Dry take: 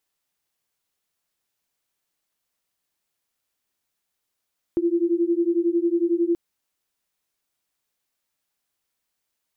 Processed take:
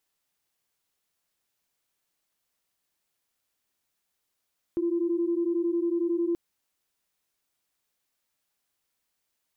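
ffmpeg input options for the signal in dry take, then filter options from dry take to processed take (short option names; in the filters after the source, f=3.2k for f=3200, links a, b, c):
-f lavfi -i "aevalsrc='0.0841*(sin(2*PI*336*t)+sin(2*PI*347*t))':d=1.58:s=44100"
-af "alimiter=limit=-22dB:level=0:latency=1:release=17,asoftclip=type=tanh:threshold=-16dB"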